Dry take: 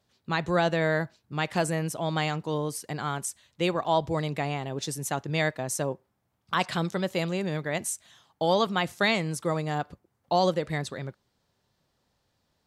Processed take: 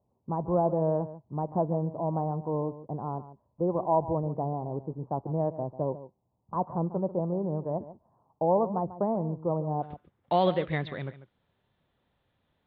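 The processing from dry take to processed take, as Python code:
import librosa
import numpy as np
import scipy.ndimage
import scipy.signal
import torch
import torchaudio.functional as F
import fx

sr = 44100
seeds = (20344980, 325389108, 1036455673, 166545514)

y = fx.block_float(x, sr, bits=5)
y = fx.cheby1_lowpass(y, sr, hz=fx.steps((0.0, 1000.0), (9.82, 3600.0)), order=5)
y = y + 10.0 ** (-14.5 / 20.0) * np.pad(y, (int(143 * sr / 1000.0), 0))[:len(y)]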